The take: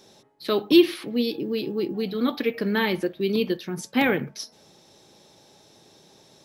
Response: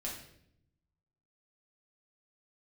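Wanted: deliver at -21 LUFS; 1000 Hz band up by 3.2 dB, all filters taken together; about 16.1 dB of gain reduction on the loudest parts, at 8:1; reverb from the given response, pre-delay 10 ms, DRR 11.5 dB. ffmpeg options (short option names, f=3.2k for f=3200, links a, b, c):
-filter_complex "[0:a]equalizer=f=1k:t=o:g=4,acompressor=threshold=-27dB:ratio=8,asplit=2[a][b];[1:a]atrim=start_sample=2205,adelay=10[c];[b][c]afir=irnorm=-1:irlink=0,volume=-12dB[d];[a][d]amix=inputs=2:normalize=0,volume=11dB"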